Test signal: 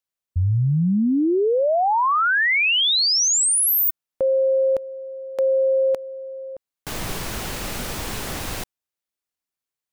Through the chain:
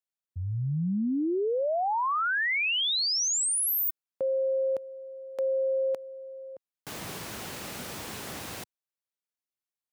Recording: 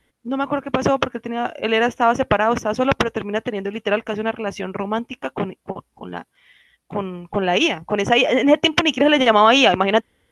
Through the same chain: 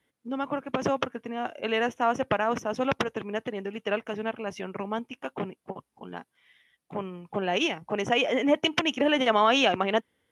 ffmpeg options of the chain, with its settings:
-af "highpass=110,volume=-8.5dB"

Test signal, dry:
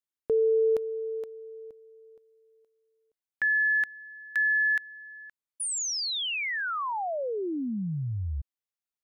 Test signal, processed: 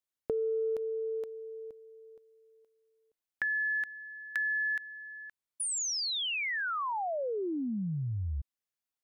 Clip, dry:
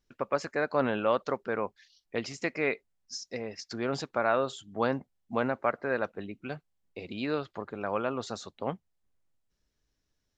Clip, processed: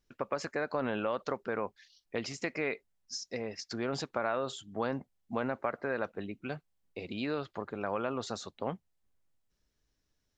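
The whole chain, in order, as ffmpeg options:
-af "acompressor=threshold=-31dB:ratio=6:attack=15:release=80:knee=6:detection=peak"

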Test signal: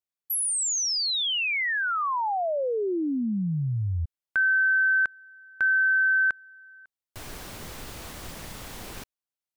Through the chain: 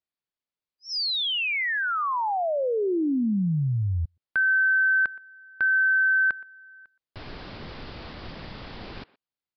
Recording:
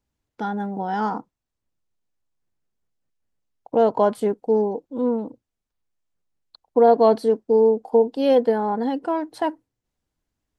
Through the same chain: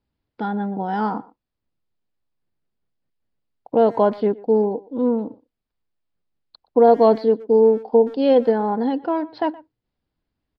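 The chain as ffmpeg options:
-filter_complex "[0:a]equalizer=f=210:w=0.48:g=3,aresample=11025,aresample=44100,asplit=2[a][b];[b]adelay=120,highpass=300,lowpass=3.4k,asoftclip=type=hard:threshold=-12dB,volume=-20dB[c];[a][c]amix=inputs=2:normalize=0"

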